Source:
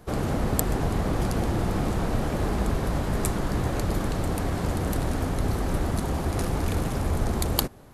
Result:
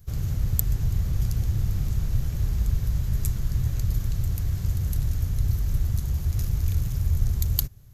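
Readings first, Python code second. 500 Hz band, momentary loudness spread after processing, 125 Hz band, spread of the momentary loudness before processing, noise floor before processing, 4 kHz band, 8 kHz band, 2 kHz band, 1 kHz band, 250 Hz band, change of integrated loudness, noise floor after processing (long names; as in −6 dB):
−19.0 dB, 2 LU, +3.0 dB, 2 LU, −29 dBFS, −6.5 dB, −4.0 dB, −13.0 dB, −20.0 dB, −10.5 dB, +0.5 dB, −32 dBFS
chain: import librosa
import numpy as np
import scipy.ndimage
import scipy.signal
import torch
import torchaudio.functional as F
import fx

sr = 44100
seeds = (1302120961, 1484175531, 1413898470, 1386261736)

y = fx.curve_eq(x, sr, hz=(120.0, 250.0, 370.0, 830.0, 1800.0, 4500.0, 6600.0, 9500.0, 14000.0), db=(0, -22, -22, -26, -17, -10, -4, -15, 6))
y = F.gain(torch.from_numpy(y), 4.0).numpy()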